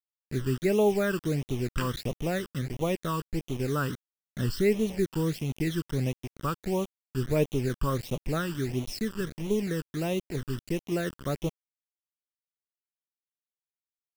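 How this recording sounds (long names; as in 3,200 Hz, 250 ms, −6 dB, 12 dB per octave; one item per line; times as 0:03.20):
a quantiser's noise floor 6 bits, dither none
phaser sweep stages 12, 1.5 Hz, lowest notch 680–1,600 Hz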